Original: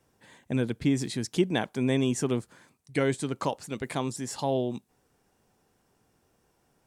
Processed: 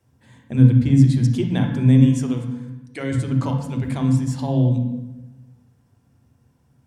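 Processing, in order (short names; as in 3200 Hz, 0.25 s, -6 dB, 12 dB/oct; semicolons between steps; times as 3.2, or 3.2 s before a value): 1.99–3.12 HPF 500 Hz 6 dB/oct; on a send: reverb RT60 1.0 s, pre-delay 3 ms, DRR 2.5 dB; on the sum: gain -2 dB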